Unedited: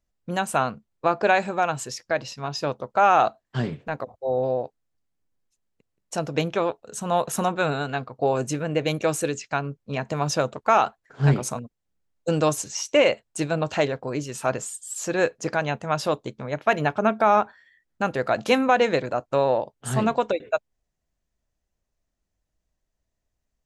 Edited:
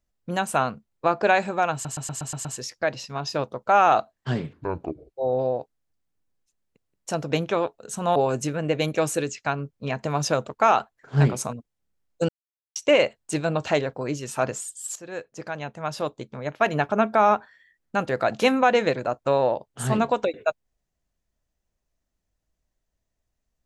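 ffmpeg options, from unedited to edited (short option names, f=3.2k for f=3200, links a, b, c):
-filter_complex "[0:a]asplit=13[a][b][c][d][e][f][g][h][i][j][k][l][m];[a]atrim=end=1.852[n];[b]atrim=start=1.728:end=1.852[o];[c]atrim=start=1.728:end=1.852[p];[d]atrim=start=1.728:end=1.852[q];[e]atrim=start=1.728:end=1.852[r];[f]atrim=start=1.728:end=1.852[s];[g]atrim=start=1.728:end=3.814[t];[h]atrim=start=3.81:end=4.18,asetpts=PTS-STARTPTS,asetrate=26901,aresample=44100,atrim=end_sample=26749,asetpts=PTS-STARTPTS[u];[i]atrim=start=4.176:end=7.202[v];[j]atrim=start=8.218:end=12.35,asetpts=PTS-STARTPTS,afade=t=out:st=4.128:d=0.004:c=hsin[w];[k]atrim=start=12.35:end=12.82,asetpts=PTS-STARTPTS,volume=0[x];[l]atrim=start=12.82:end=15.02,asetpts=PTS-STARTPTS,afade=t=in:d=0.004:c=hsin,afade=t=out:st=2.196:d=0.004:c=hsin:silence=0.149624[y];[m]atrim=start=15.02,asetpts=PTS-STARTPTS,afade=t=in:d=1.9:silence=0.149624[z];[n][o]acrossfade=d=0.004:c1=hsin:c2=hsin[aa];[aa][p]acrossfade=d=0.004:c1=hsin:c2=hsin[ab];[ab][q]acrossfade=d=0.004:c1=hsin:c2=hsin[ac];[ac][r]acrossfade=d=0.004:c1=hsin:c2=hsin[ad];[ad][s]acrossfade=d=0.004:c1=hsin:c2=hsin[ae];[ae][t]acrossfade=d=0.004:c1=hsin:c2=hsin[af];[af][u]acrossfade=d=0.004:c1=hsin:c2=hsin[ag];[ag][v]acrossfade=d=0.004:c1=hsin:c2=hsin[ah];[w][x][y][z]concat=n=4:v=0:a=1[ai];[ah][ai]acrossfade=d=0.004:c1=hsin:c2=hsin"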